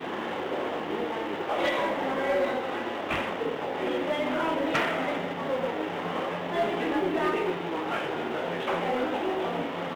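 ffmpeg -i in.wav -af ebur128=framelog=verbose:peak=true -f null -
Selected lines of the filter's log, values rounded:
Integrated loudness:
  I:         -29.1 LUFS
  Threshold: -39.1 LUFS
Loudness range:
  LRA:         0.8 LU
  Threshold: -48.9 LUFS
  LRA low:   -29.2 LUFS
  LRA high:  -28.4 LUFS
True peak:
  Peak:      -19.2 dBFS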